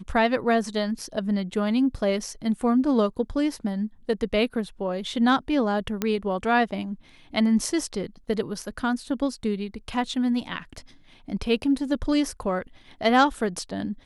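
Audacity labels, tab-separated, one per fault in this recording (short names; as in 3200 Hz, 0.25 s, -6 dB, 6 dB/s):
6.020000	6.020000	pop -10 dBFS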